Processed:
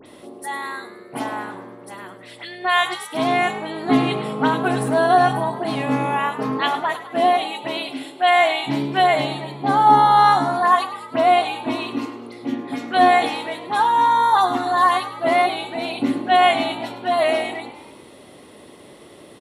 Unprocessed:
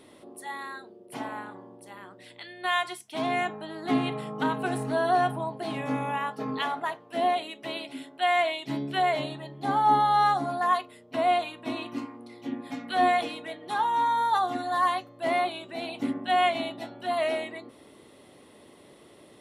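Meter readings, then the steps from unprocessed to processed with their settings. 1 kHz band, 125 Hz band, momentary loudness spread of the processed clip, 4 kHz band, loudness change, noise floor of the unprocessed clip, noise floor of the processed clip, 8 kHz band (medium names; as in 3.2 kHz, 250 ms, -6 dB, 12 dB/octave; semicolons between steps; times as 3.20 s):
+9.0 dB, +8.5 dB, 15 LU, +9.0 dB, +9.0 dB, -54 dBFS, -44 dBFS, no reading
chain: phase dispersion highs, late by 61 ms, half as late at 2.8 kHz; frequency-shifting echo 103 ms, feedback 58%, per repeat +56 Hz, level -14 dB; trim +8.5 dB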